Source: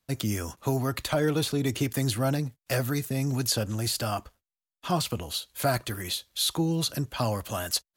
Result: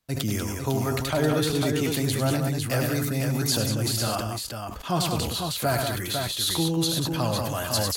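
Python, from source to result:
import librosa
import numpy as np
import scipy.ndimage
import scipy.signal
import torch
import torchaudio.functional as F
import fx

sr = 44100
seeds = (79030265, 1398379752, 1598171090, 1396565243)

p1 = x + fx.echo_multitap(x, sr, ms=(73, 100, 189, 502), db=(-18.0, -8.5, -6.5, -5.5), dry=0)
y = fx.sustainer(p1, sr, db_per_s=29.0)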